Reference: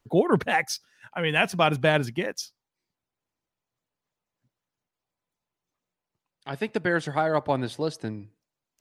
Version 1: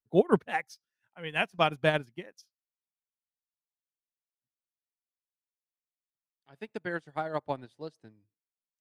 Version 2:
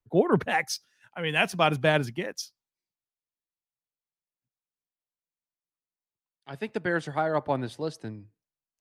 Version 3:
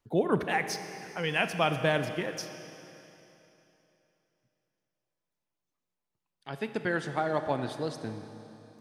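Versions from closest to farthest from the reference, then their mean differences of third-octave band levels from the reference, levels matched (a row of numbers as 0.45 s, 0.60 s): 2, 3, 1; 2.0 dB, 5.5 dB, 8.0 dB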